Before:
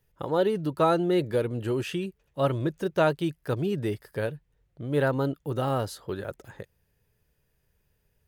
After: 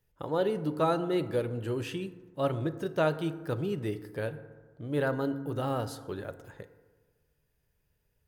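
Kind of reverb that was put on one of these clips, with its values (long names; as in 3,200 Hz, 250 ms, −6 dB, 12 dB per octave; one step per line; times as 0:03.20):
feedback delay network reverb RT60 1.4 s, low-frequency decay 1×, high-frequency decay 0.4×, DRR 10.5 dB
level −4.5 dB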